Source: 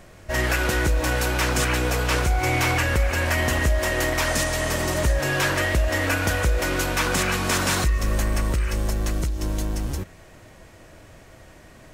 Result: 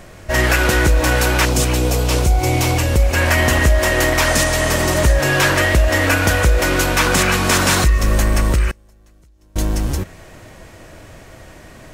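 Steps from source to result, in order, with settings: 1.45–3.14 bell 1600 Hz -12.5 dB 1.4 oct; 8.7–9.56 flipped gate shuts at -21 dBFS, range -33 dB; gain +7.5 dB

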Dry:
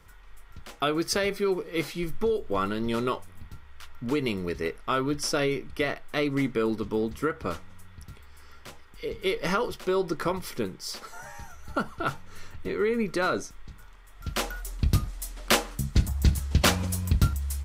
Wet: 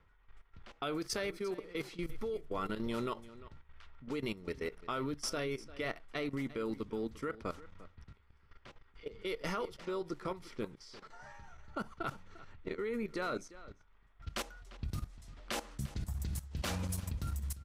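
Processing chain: level quantiser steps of 15 dB; echo 0.348 s -17.5 dB; low-pass opened by the level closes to 2800 Hz, open at -28 dBFS; gain -6 dB

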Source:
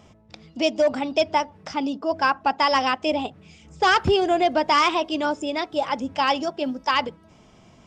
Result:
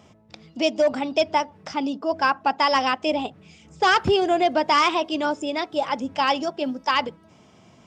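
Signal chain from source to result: HPF 92 Hz

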